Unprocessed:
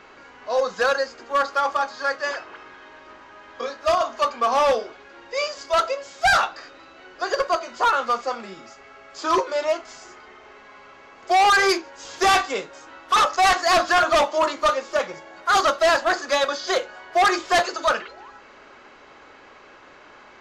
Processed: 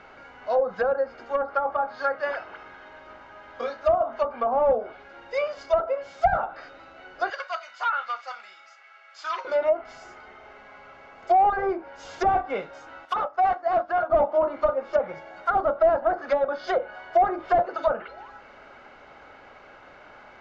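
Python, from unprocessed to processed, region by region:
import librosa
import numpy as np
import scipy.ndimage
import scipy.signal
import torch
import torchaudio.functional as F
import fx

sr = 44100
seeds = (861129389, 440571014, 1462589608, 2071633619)

y = fx.chain(x, sr, fx.highpass(hz=1500.0, slope=12),
    fx.high_shelf(hz=10000.0, db=-11.0), at=(7.3, 9.45))
y = fx.chain(y, sr, fx.tilt_eq(slope=2.5),
    fx.upward_expand(threshold_db=-30.0, expansion=1.5), at=(13.05, 14.1))
y = fx.env_lowpass_down(y, sr, base_hz=730.0, full_db=-17.0)
y = fx.lowpass(y, sr, hz=2100.0, slope=6)
y = y + 0.4 * np.pad(y, (int(1.4 * sr / 1000.0), 0))[:len(y)]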